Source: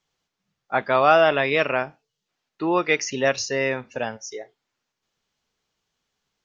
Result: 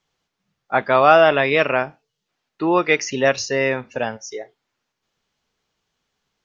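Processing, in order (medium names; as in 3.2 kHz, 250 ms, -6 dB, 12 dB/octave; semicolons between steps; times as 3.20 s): treble shelf 5.2 kHz -5 dB; trim +4 dB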